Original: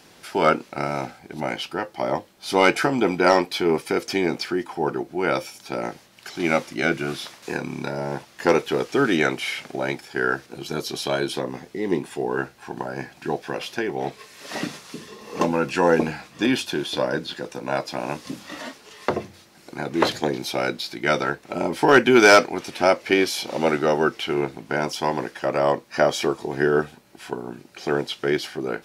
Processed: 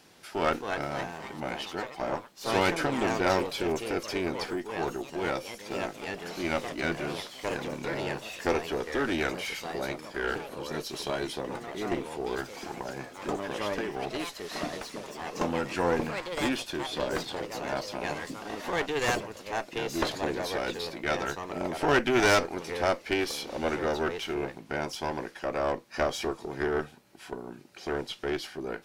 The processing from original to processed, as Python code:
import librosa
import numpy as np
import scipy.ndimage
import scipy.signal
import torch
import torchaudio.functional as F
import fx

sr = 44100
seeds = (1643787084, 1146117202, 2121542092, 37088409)

y = fx.diode_clip(x, sr, knee_db=-21.5)
y = fx.echo_pitch(y, sr, ms=327, semitones=3, count=3, db_per_echo=-6.0)
y = F.gain(torch.from_numpy(y), -6.5).numpy()